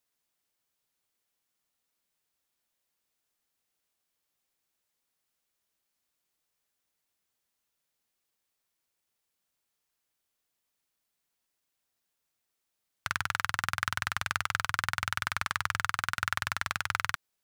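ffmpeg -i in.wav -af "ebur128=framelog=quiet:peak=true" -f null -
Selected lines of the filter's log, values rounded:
Integrated loudness:
  I:         -32.0 LUFS
  Threshold: -42.0 LUFS
Loudness range:
  LRA:         9.1 LU
  Threshold: -53.5 LUFS
  LRA low:   -40.7 LUFS
  LRA high:  -31.6 LUFS
True peak:
  Peak:       -8.5 dBFS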